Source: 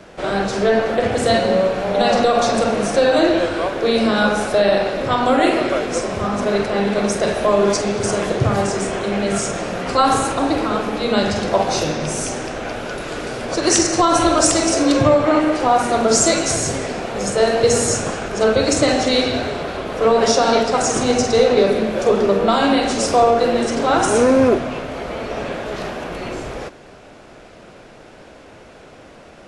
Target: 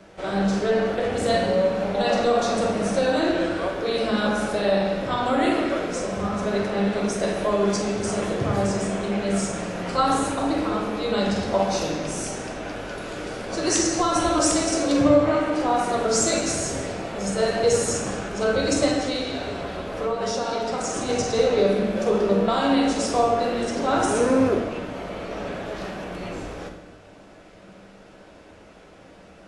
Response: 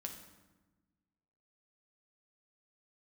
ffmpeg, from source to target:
-filter_complex "[0:a]asettb=1/sr,asplit=3[link_01][link_02][link_03];[link_01]atrim=end=18.884[link_04];[link_02]atrim=start=18.88:end=21.09,asetpts=PTS-STARTPTS,afade=type=in:duration=0.004:curve=qsin,afade=type=out:start_time=2.206:duration=0.004:curve=qsin,acompressor=threshold=-17dB:ratio=4[link_05];[link_03]atrim=start=21.086[link_06];[link_04][link_05]acrossfade=duration=0.004:curve1=hsin:curve2=qsin[link_07];[link_07][link_06]acrossfade=duration=0.004:curve1=qsin:curve2=hsin[link_08];[1:a]atrim=start_sample=2205,afade=type=out:start_time=0.38:duration=0.01,atrim=end_sample=17199[link_09];[link_08][link_09]afir=irnorm=-1:irlink=0,volume=-3.5dB"

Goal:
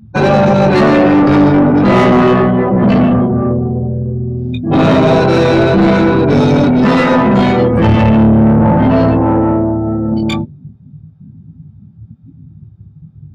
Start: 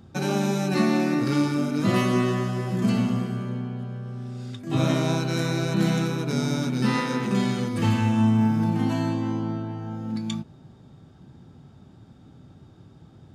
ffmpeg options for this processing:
ffmpeg -i in.wav -filter_complex "[0:a]afftdn=noise_reduction=34:noise_floor=-34,flanger=delay=18.5:depth=2.5:speed=0.25,lowshelf=frequency=200:gain=10.5,asplit=2[link_01][link_02];[link_02]asetrate=29433,aresample=44100,atempo=1.49831,volume=-5dB[link_03];[link_01][link_03]amix=inputs=2:normalize=0,acontrast=75,asplit=2[link_04][link_05];[link_05]highpass=frequency=720:poles=1,volume=27dB,asoftclip=type=tanh:threshold=-2.5dB[link_06];[link_04][link_06]amix=inputs=2:normalize=0,lowpass=frequency=1700:poles=1,volume=-6dB,adynamicequalizer=threshold=0.0398:dfrequency=540:dqfactor=1.3:tfrequency=540:tqfactor=1.3:attack=5:release=100:ratio=0.375:range=2.5:mode=boostabove:tftype=bell" out.wav

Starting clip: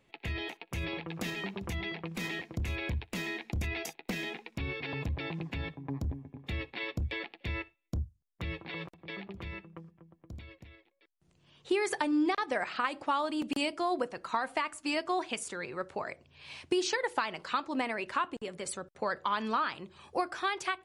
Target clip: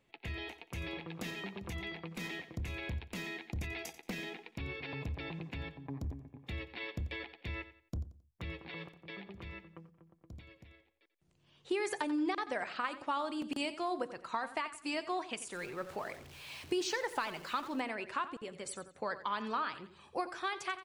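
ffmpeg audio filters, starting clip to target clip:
ffmpeg -i in.wav -filter_complex "[0:a]asettb=1/sr,asplit=3[link_01][link_02][link_03];[link_01]atrim=end=15.534[link_04];[link_02]atrim=start=15.53:end=17.8,asetpts=PTS-STARTPTS,afade=type=in:duration=0.004:curve=qsin,afade=type=out:start_time=2.266:duration=0.004:curve=qsin,aeval=exprs='val(0)+0.5*0.00668*sgn(val(0))':channel_layout=same[link_05];[link_03]atrim=start=17.796[link_06];[link_04][link_05]acrossfade=duration=0.004:curve1=hsin:curve2=qsin[link_07];[link_07][link_06]acrossfade=duration=0.004:curve1=qsin:curve2=hsin,aecho=1:1:89|178|267:0.2|0.0638|0.0204,volume=-5dB" out.wav

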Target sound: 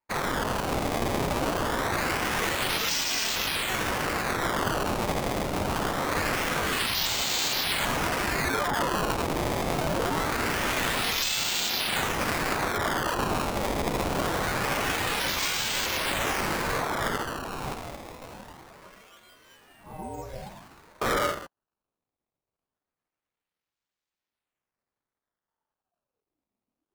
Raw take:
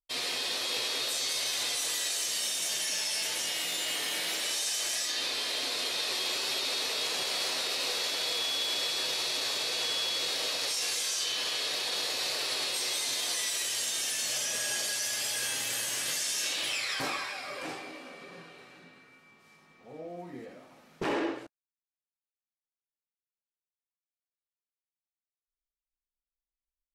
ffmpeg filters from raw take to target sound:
ffmpeg -i in.wav -af "acrusher=samples=18:mix=1:aa=0.000001:lfo=1:lforange=28.8:lforate=0.24,aeval=exprs='val(0)*sin(2*PI*570*n/s+570*0.6/0.47*sin(2*PI*0.47*n/s))':channel_layout=same,volume=7.5dB" out.wav

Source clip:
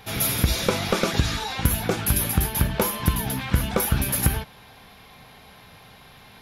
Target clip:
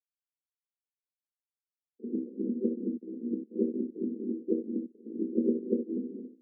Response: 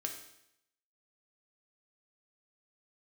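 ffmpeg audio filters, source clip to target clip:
-filter_complex "[0:a]areverse,asplit=2[link_01][link_02];[link_02]acompressor=threshold=-33dB:ratio=6,volume=1.5dB[link_03];[link_01][link_03]amix=inputs=2:normalize=0,acrusher=bits=2:mix=0:aa=0.5,asuperpass=centerf=320:order=12:qfactor=1.3,aemphasis=mode=reproduction:type=riaa[link_04];[1:a]atrim=start_sample=2205,atrim=end_sample=3528,asetrate=34839,aresample=44100[link_05];[link_04][link_05]afir=irnorm=-1:irlink=0,volume=-7.5dB"

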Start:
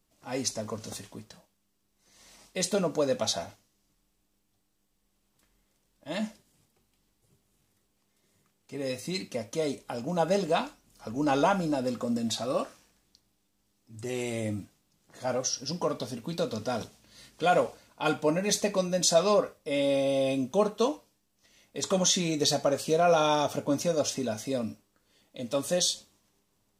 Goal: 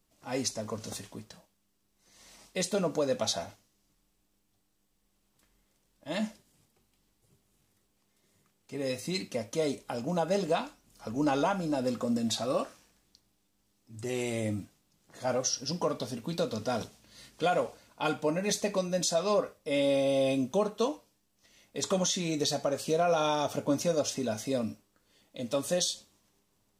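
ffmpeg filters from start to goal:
ffmpeg -i in.wav -af "alimiter=limit=-18dB:level=0:latency=1:release=353" out.wav

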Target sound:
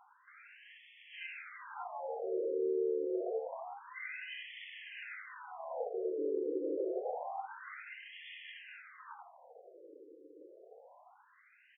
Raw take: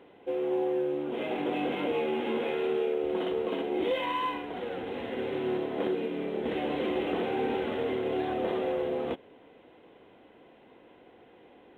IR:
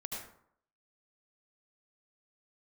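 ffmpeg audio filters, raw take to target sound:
-af "aecho=1:1:80|160|240|320:0.398|0.119|0.0358|0.0107,acompressor=threshold=-32dB:ratio=6,afftfilt=real='re*between(b*sr/1024,380*pow(2500/380,0.5+0.5*sin(2*PI*0.27*pts/sr))/1.41,380*pow(2500/380,0.5+0.5*sin(2*PI*0.27*pts/sr))*1.41)':imag='im*between(b*sr/1024,380*pow(2500/380,0.5+0.5*sin(2*PI*0.27*pts/sr))/1.41,380*pow(2500/380,0.5+0.5*sin(2*PI*0.27*pts/sr))*1.41)':win_size=1024:overlap=0.75,volume=2dB"

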